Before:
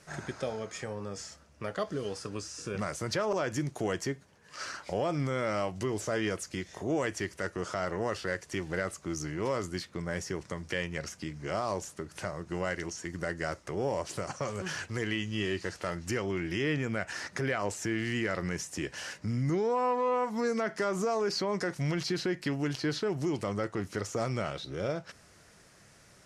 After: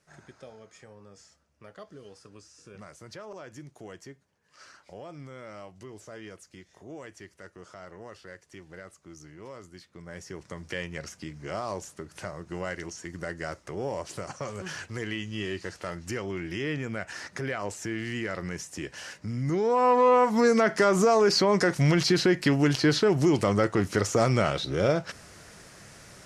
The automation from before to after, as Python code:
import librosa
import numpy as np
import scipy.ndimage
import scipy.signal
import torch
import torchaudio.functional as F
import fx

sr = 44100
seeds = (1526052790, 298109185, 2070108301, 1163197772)

y = fx.gain(x, sr, db=fx.line((9.77, -12.5), (10.63, -1.0), (19.34, -1.0), (19.98, 9.0)))